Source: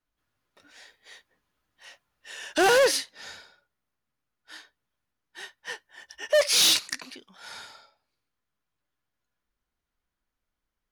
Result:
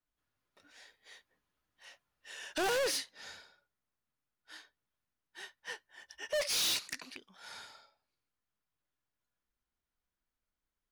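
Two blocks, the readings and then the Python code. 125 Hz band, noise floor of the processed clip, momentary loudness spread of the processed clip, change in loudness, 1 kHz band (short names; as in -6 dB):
n/a, under -85 dBFS, 24 LU, -12.5 dB, -12.0 dB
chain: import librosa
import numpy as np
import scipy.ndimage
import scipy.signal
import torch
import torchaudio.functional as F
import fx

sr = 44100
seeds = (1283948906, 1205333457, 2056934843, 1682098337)

y = fx.rattle_buzz(x, sr, strikes_db=-48.0, level_db=-21.0)
y = np.clip(10.0 ** (23.5 / 20.0) * y, -1.0, 1.0) / 10.0 ** (23.5 / 20.0)
y = F.gain(torch.from_numpy(y), -6.5).numpy()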